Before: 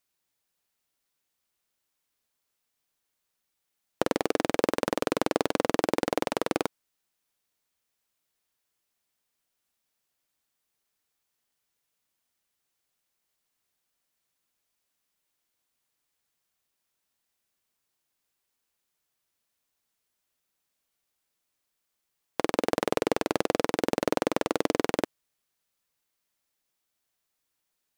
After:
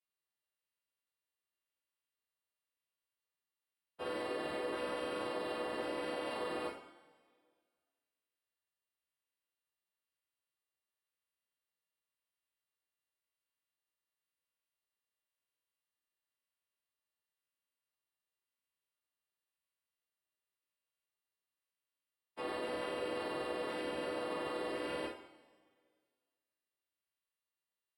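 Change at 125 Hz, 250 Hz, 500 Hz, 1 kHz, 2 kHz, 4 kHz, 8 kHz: -16.0, -13.5, -10.5, -10.5, -8.5, -8.5, -17.0 dB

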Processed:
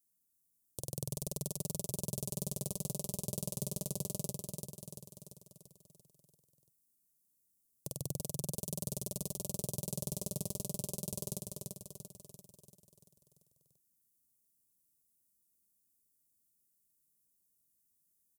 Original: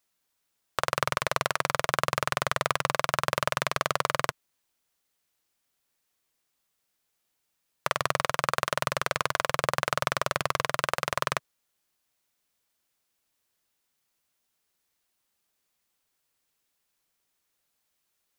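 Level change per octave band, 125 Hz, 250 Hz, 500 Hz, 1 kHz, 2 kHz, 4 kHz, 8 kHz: -2.5, 0.0, -13.5, -31.0, -39.0, -16.0, -1.5 dB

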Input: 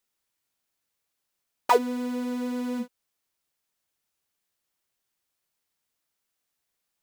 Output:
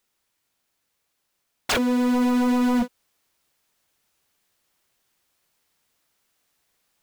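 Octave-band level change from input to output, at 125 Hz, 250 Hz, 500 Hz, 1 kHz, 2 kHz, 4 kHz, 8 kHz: n/a, +9.5 dB, 0.0 dB, -1.0 dB, +7.5 dB, +10.0 dB, +9.0 dB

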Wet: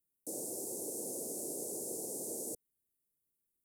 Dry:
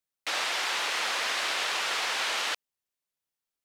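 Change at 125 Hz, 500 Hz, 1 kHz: n/a, -2.5 dB, -25.5 dB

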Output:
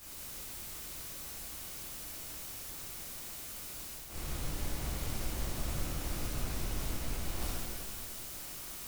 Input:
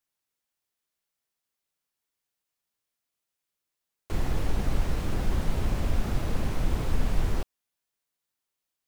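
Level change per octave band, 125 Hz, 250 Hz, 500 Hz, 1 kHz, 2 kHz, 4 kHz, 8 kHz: -9.5, -9.0, -8.0, -6.5, -3.5, +2.0, +8.5 dB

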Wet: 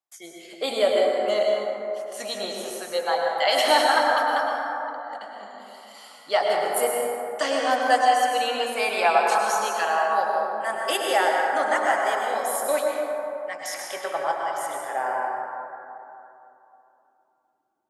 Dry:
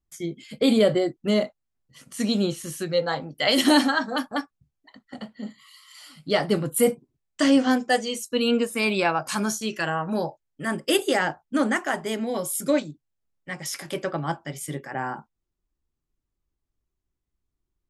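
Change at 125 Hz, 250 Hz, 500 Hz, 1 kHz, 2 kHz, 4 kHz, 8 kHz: under -20 dB, -14.0 dB, +2.0 dB, +8.5 dB, +2.5 dB, 0.0 dB, -0.5 dB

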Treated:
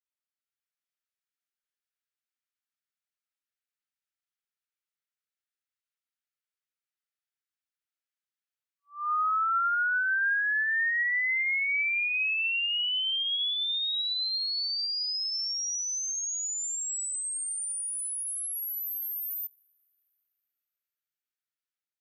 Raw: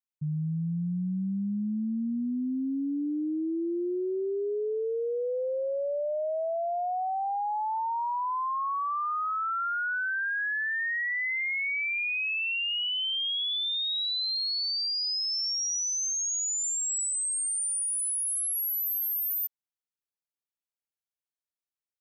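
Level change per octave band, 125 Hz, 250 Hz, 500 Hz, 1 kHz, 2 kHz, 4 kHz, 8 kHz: n/a, under -40 dB, under -40 dB, -3.5 dB, +2.5 dB, 0.0 dB, -3.0 dB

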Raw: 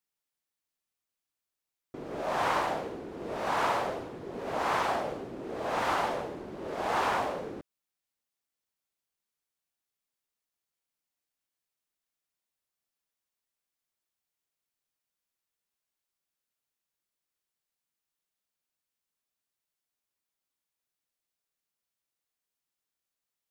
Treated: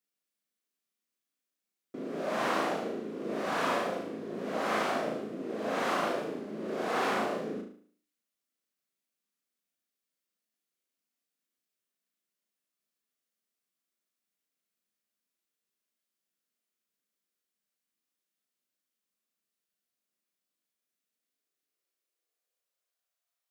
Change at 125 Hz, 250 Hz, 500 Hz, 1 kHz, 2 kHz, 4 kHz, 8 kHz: -1.5, +4.0, +1.0, -3.5, -0.5, 0.0, 0.0 dB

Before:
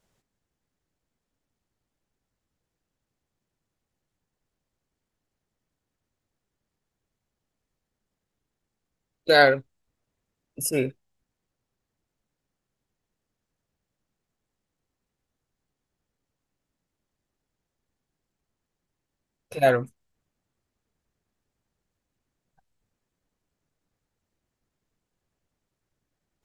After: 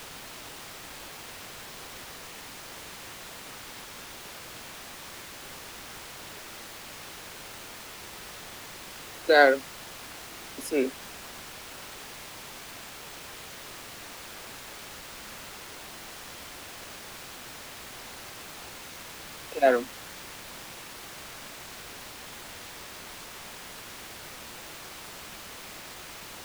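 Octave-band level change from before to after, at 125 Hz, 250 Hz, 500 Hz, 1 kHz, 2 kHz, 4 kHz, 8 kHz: -9.5, 0.0, -1.0, -0.5, -1.0, +0.5, +3.0 dB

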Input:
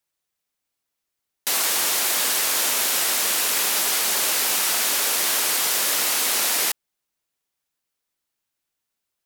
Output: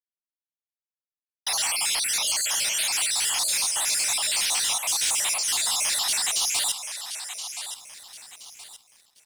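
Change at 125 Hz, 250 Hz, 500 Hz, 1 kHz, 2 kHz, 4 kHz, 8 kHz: n/a, under -10 dB, -11.0 dB, -5.5 dB, -5.0 dB, -1.0 dB, -1.5 dB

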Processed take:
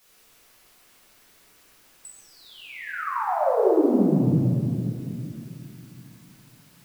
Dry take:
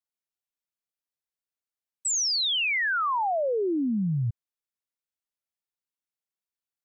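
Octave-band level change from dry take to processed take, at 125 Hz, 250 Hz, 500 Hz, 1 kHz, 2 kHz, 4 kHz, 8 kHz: +7.0 dB, +7.5 dB, +7.0 dB, +1.5 dB, -8.0 dB, -20.5 dB, under -15 dB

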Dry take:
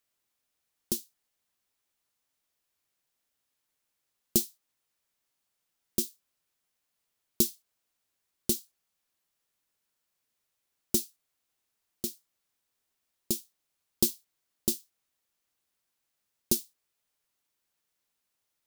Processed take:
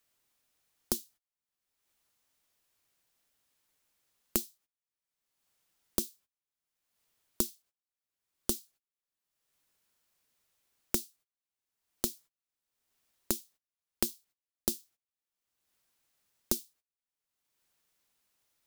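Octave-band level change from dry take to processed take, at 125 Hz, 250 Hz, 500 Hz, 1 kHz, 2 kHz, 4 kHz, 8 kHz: -7.0, -4.5, -3.0, +8.0, +6.0, -4.0, -4.0 dB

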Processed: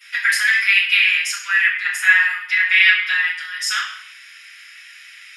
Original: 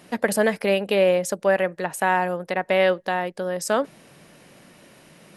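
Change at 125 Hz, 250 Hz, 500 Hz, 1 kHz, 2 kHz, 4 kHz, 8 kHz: under -40 dB, under -40 dB, under -40 dB, -8.0 dB, +14.5 dB, +13.5 dB, +5.0 dB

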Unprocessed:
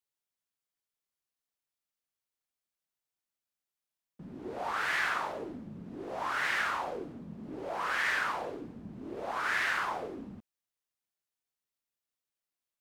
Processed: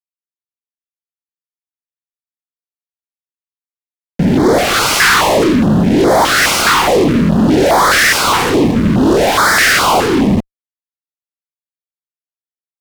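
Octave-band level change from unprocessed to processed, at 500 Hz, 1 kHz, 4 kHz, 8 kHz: +27.5, +22.0, +27.0, +32.5 dB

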